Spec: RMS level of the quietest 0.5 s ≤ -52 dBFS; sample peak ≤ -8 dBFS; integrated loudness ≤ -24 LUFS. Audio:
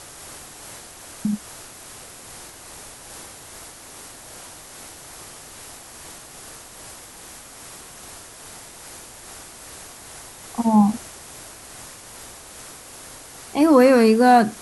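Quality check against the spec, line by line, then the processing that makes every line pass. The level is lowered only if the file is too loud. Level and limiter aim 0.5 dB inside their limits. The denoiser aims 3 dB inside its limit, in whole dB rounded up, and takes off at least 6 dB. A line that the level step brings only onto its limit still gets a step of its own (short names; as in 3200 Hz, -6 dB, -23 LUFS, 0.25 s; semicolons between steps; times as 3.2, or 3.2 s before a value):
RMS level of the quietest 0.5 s -42 dBFS: fail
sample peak -4.5 dBFS: fail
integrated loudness -17.5 LUFS: fail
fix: denoiser 6 dB, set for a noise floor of -42 dBFS; gain -7 dB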